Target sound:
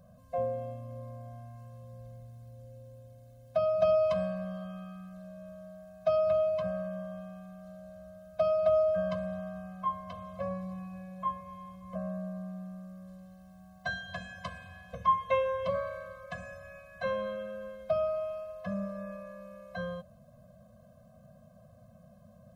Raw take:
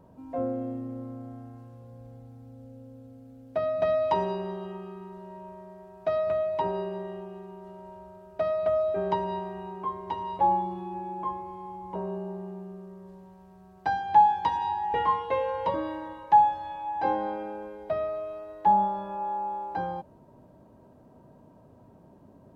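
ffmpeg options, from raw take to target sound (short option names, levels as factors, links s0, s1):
-af "highshelf=f=3700:g=9.5,afftfilt=real='re*eq(mod(floor(b*sr/1024/250),2),0)':imag='im*eq(mod(floor(b*sr/1024/250),2),0)':win_size=1024:overlap=0.75"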